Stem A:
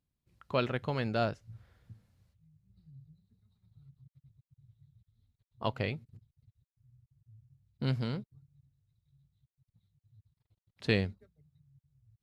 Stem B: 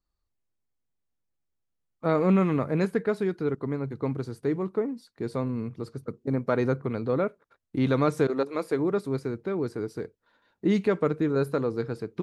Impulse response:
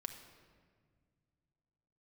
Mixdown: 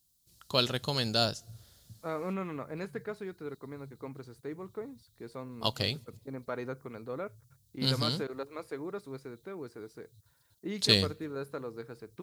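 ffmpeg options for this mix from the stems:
-filter_complex "[0:a]aexciter=amount=4.8:drive=9.5:freq=3400,volume=-0.5dB,asplit=2[link_01][link_02];[link_02]volume=-22dB[link_03];[1:a]lowshelf=frequency=440:gain=-8,volume=-8.5dB[link_04];[2:a]atrim=start_sample=2205[link_05];[link_03][link_05]afir=irnorm=-1:irlink=0[link_06];[link_01][link_04][link_06]amix=inputs=3:normalize=0"

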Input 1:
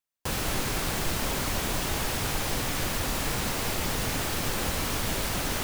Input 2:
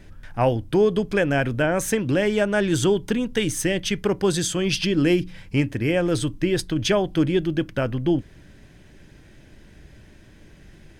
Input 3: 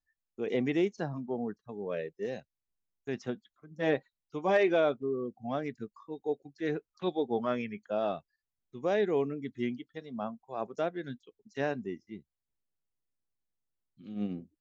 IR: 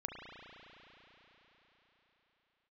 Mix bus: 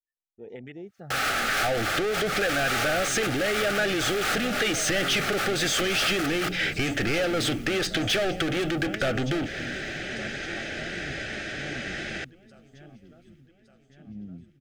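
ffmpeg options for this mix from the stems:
-filter_complex "[0:a]equalizer=frequency=1200:width=1.5:gain=9.5,adelay=850,volume=-3dB,asplit=2[link_01][link_02];[link_02]volume=-19dB[link_03];[1:a]lowpass=frequency=8100:width=0.5412,lowpass=frequency=8100:width=1.3066,adelay=1250,volume=-1.5dB,asplit=2[link_04][link_05];[link_05]volume=-15.5dB[link_06];[2:a]afwtdn=0.0126,asubboost=boost=11:cutoff=150,alimiter=limit=-23.5dB:level=0:latency=1:release=147,volume=-2dB,asplit=3[link_07][link_08][link_09];[link_08]volume=-9.5dB[link_10];[link_09]apad=whole_len=286000[link_11];[link_01][link_11]sidechaincompress=threshold=-47dB:ratio=8:attack=16:release=105[link_12];[link_12][link_04]amix=inputs=2:normalize=0,asplit=2[link_13][link_14];[link_14]highpass=frequency=720:poles=1,volume=36dB,asoftclip=type=tanh:threshold=-10dB[link_15];[link_13][link_15]amix=inputs=2:normalize=0,lowpass=frequency=2100:poles=1,volume=-6dB,acompressor=threshold=-19dB:ratio=6,volume=0dB[link_16];[link_03][link_06][link_10]amix=inputs=3:normalize=0,aecho=0:1:1163|2326|3489|4652|5815|6978|8141:1|0.5|0.25|0.125|0.0625|0.0312|0.0156[link_17];[link_07][link_16][link_17]amix=inputs=3:normalize=0,asuperstop=centerf=1000:order=4:qfactor=2.5,equalizer=frequency=190:width=0.37:gain=-8"

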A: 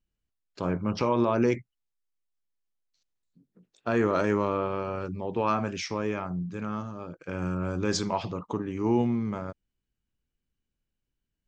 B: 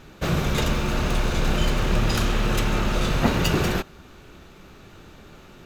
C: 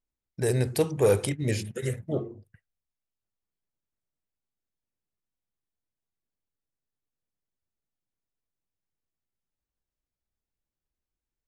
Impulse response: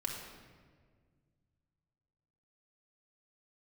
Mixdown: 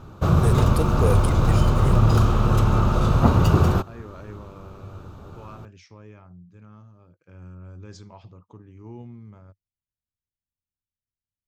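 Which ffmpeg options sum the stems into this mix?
-filter_complex "[0:a]volume=-18.5dB[link_01];[1:a]highshelf=frequency=1500:width_type=q:width=3:gain=-6.5,volume=0dB[link_02];[2:a]acrusher=bits=7:mix=0:aa=0.000001,volume=-3.5dB[link_03];[link_01][link_02][link_03]amix=inputs=3:normalize=0,equalizer=frequency=96:width=1.5:gain=13"

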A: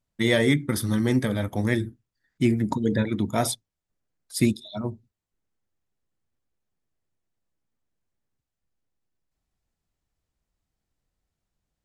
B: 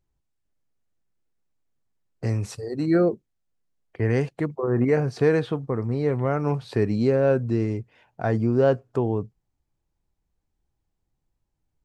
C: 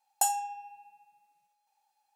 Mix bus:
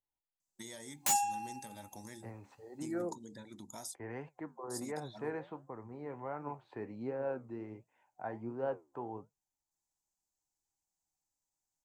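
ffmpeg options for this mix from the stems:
ffmpeg -i stem1.wav -i stem2.wav -i stem3.wav -filter_complex "[0:a]highpass=frequency=250:poles=1,highshelf=frequency=4000:width_type=q:width=1.5:gain=13,acompressor=threshold=-31dB:ratio=4,adelay=400,volume=-16dB[link_01];[1:a]acrossover=split=270 2700:gain=0.251 1 0.0794[link_02][link_03][link_04];[link_02][link_03][link_04]amix=inputs=3:normalize=0,flanger=delay=5.9:depth=8.9:regen=75:speed=1.4:shape=triangular,volume=-11dB[link_05];[2:a]highpass=1300,aeval=exprs='0.0398*(abs(mod(val(0)/0.0398+3,4)-2)-1)':channel_layout=same,adelay=850,volume=2.5dB[link_06];[link_01][link_05][link_06]amix=inputs=3:normalize=0,superequalizer=7b=0.631:9b=2.24:15b=1.58" out.wav

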